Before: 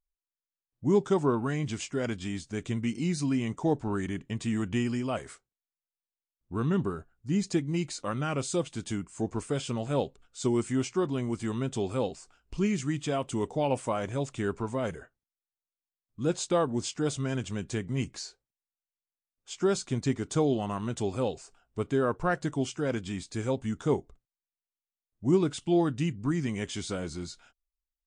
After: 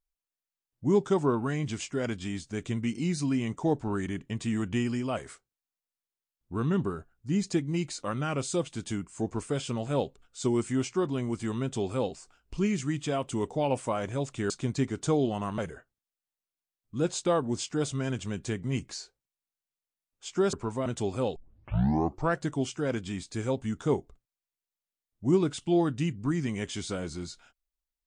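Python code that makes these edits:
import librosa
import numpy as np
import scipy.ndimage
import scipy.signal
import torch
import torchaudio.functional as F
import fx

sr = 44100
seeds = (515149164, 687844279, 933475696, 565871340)

y = fx.edit(x, sr, fx.swap(start_s=14.5, length_s=0.33, other_s=19.78, other_length_s=1.08),
    fx.tape_start(start_s=21.36, length_s=0.99), tone=tone)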